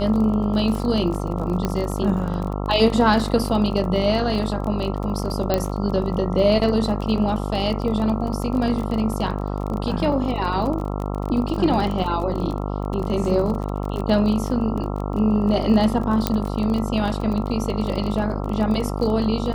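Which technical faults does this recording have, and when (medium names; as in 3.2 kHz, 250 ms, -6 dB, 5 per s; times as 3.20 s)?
buzz 50 Hz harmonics 27 -26 dBFS
crackle 30 per s -27 dBFS
1.65 s: pop -10 dBFS
5.54 s: pop -7 dBFS
12.04 s: dropout 3.8 ms
16.27 s: pop -4 dBFS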